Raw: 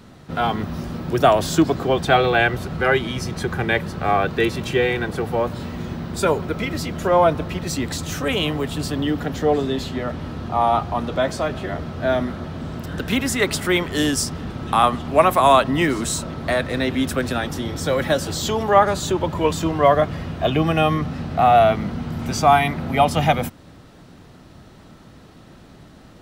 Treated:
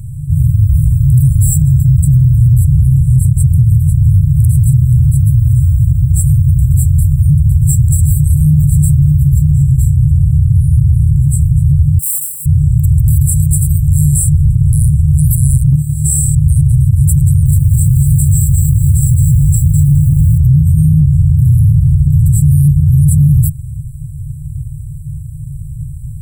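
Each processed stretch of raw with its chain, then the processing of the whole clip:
11.99–12.46 s: square wave that keeps the level + high-pass 1.2 kHz + comb 4.6 ms, depth 63%
15.76–16.35 s: high-pass 110 Hz 6 dB/octave + compression 12:1, threshold -26 dBFS + flutter echo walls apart 4.7 m, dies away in 0.75 s
17.24–20.38 s: peaking EQ 1.7 kHz -13 dB 0.28 oct + bit-crushed delay 215 ms, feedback 35%, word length 7-bit, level -4.5 dB
whole clip: FFT band-reject 160–7500 Hz; treble shelf 3.5 kHz -8 dB; loudness maximiser +27.5 dB; trim -1 dB

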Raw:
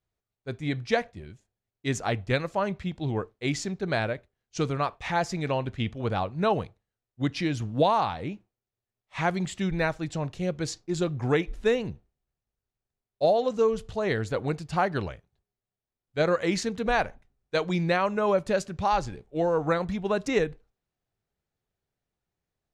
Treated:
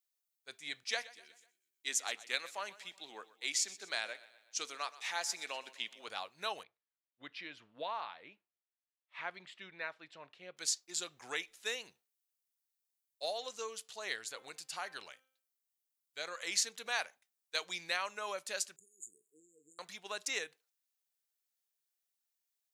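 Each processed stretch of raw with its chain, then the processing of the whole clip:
0.83–6.08 s: high-pass 190 Hz 24 dB/octave + feedback delay 124 ms, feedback 50%, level -18 dB
6.63–10.57 s: distance through air 420 m + band-stop 780 Hz, Q 11
14.15–16.47 s: compression 1.5:1, threshold -29 dBFS + de-hum 261.1 Hz, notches 13
18.76–19.79 s: frequency weighting D + compression 2:1, threshold -42 dBFS + brick-wall FIR band-stop 470–6700 Hz
whole clip: high-pass 410 Hz 6 dB/octave; differentiator; trim +5 dB

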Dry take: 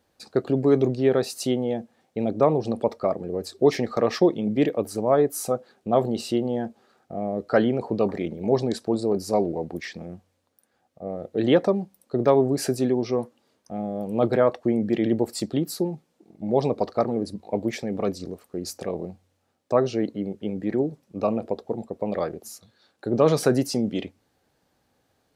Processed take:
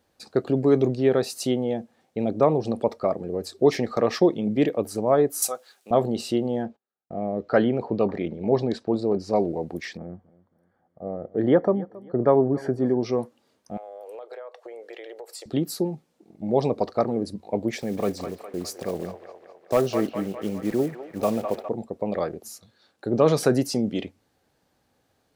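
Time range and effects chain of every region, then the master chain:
5.42–5.91 s: high-pass 660 Hz 6 dB/octave + tilt EQ +4 dB/octave
6.63–9.36 s: low-pass 4.1 kHz + gate -54 dBFS, range -34 dB
9.97–13.01 s: Savitzky-Golay filter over 41 samples + feedback delay 272 ms, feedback 36%, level -21 dB
13.77–15.46 s: elliptic high-pass 450 Hz, stop band 60 dB + compression 16:1, threshold -35 dBFS
17.77–21.69 s: block-companded coder 5-bit + overload inside the chain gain 12 dB + feedback echo behind a band-pass 205 ms, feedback 58%, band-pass 1.2 kHz, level -4.5 dB
whole clip: none

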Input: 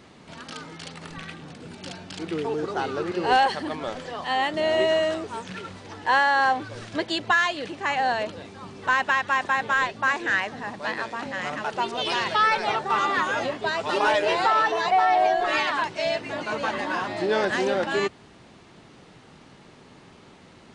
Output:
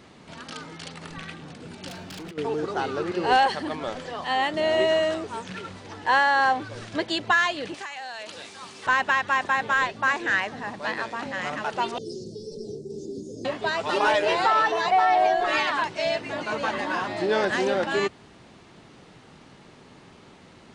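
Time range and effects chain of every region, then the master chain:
1.88–2.38 s: compressor with a negative ratio -33 dBFS, ratio -0.5 + overload inside the chain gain 35.5 dB
7.74–8.87 s: tilt EQ +4 dB/octave + compression 16:1, threshold -31 dBFS + loudspeaker Doppler distortion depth 0.1 ms
11.98–13.45 s: Chebyshev band-stop 430–5100 Hz, order 4 + treble shelf 4.2 kHz -9 dB
whole clip: none

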